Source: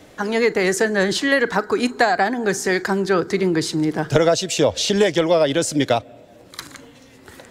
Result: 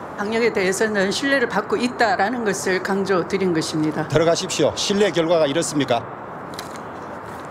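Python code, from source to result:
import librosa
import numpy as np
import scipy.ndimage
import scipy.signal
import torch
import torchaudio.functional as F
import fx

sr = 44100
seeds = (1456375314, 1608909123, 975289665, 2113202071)

y = fx.dmg_noise_band(x, sr, seeds[0], low_hz=86.0, high_hz=1300.0, level_db=-32.0)
y = fx.hum_notches(y, sr, base_hz=60, count=2)
y = F.gain(torch.from_numpy(y), -1.0).numpy()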